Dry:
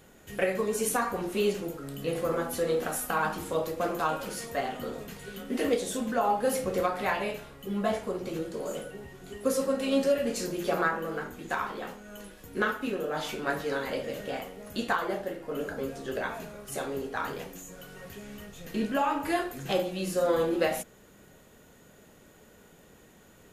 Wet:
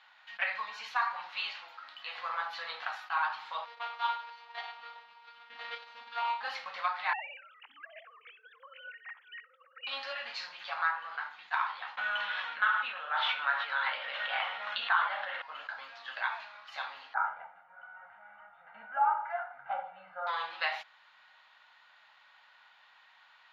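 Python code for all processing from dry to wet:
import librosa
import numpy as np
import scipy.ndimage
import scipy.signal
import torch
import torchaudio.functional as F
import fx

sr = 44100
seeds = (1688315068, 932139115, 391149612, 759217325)

y = fx.chain(x, sr, fx.highpass(hz=210.0, slope=24),
    fx.low_shelf(hz=460.0, db=-4.5), at=(1.33, 2.18))
y = fx.chain(y, sr, fx.median_filter(points=25),
    fx.robotise(hz=235.0),
    fx.comb(ms=6.5, depth=0.74), at=(3.65, 6.41))
y = fx.chain(y, sr, fx.sine_speech(),
    fx.over_compress(threshold_db=-37.0, ratio=-1.0),
    fx.echo_banded(ms=62, feedback_pct=41, hz=1000.0, wet_db=-16.0), at=(7.13, 9.87))
y = fx.chain(y, sr, fx.cabinet(low_hz=210.0, low_slope=12, high_hz=5200.0, hz=(210.0, 540.0, 1400.0, 3300.0, 4700.0), db=(4, 5, 6, 3, -10)),
    fx.env_flatten(amount_pct=70), at=(11.97, 15.42))
y = fx.chain(y, sr, fx.lowpass(hz=1400.0, slope=24),
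    fx.comb(ms=1.4, depth=0.88), at=(17.14, 20.27))
y = scipy.signal.sosfilt(scipy.signal.ellip(3, 1.0, 40, [880.0, 4300.0], 'bandpass', fs=sr, output='sos'), y)
y = fx.rider(y, sr, range_db=3, speed_s=0.5)
y = fx.attack_slew(y, sr, db_per_s=580.0)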